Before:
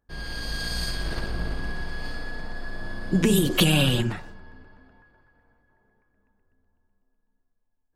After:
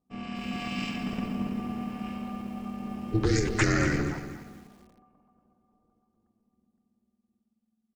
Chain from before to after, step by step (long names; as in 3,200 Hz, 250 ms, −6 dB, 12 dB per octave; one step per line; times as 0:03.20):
pitch shifter −9.5 semitones
ring modulation 220 Hz
feedback echo at a low word length 238 ms, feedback 35%, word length 8 bits, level −11 dB
level −1.5 dB